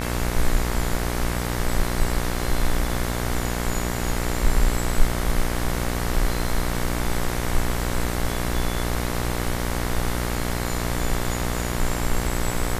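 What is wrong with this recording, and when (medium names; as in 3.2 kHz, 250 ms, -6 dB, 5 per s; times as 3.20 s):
buzz 60 Hz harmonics 38 -27 dBFS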